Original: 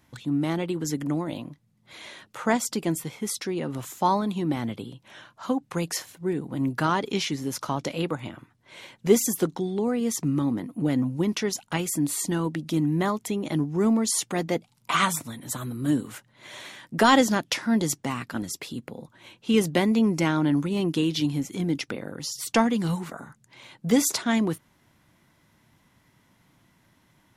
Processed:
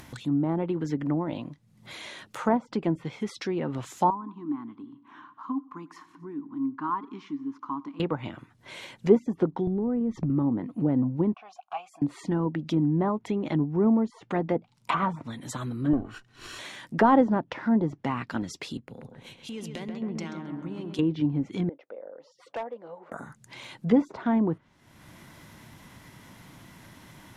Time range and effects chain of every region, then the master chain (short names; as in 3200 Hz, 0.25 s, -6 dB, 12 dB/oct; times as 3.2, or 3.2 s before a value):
4.1–8 double band-pass 550 Hz, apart 1.9 oct + feedback echo 91 ms, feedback 54%, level -23 dB
9.67–10.3 tilt -4.5 dB/oct + compressor 8:1, threshold -24 dBFS
11.34–12.02 vowel filter a + resonant low shelf 570 Hz -9.5 dB, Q 3
15.93–16.59 minimum comb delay 0.7 ms + comb 2.7 ms, depth 40%
18.77–20.99 compressor 5:1, threshold -35 dBFS + darkening echo 0.134 s, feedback 63%, low-pass 2300 Hz, level -5 dB + three-band expander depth 100%
21.69–23.12 ladder band-pass 600 Hz, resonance 70% + overloaded stage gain 29.5 dB
whole clip: treble ducked by the level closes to 900 Hz, closed at -21.5 dBFS; dynamic EQ 920 Hz, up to +4 dB, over -45 dBFS, Q 4.1; upward compressor, threshold -37 dBFS